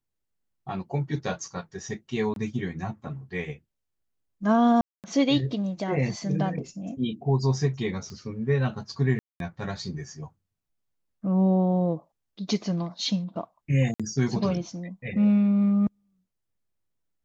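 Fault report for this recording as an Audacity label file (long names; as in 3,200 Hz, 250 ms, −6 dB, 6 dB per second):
2.340000	2.360000	drop-out 22 ms
4.810000	5.040000	drop-out 228 ms
8.100000	8.100000	click −28 dBFS
9.190000	9.400000	drop-out 212 ms
13.940000	14.000000	drop-out 56 ms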